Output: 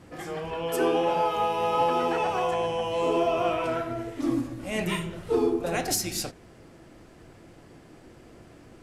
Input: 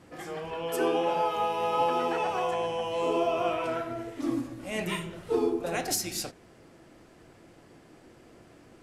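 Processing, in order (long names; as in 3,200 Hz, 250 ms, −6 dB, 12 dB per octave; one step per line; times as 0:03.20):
low-shelf EQ 130 Hz +7 dB
in parallel at −10 dB: hard clipping −23 dBFS, distortion −15 dB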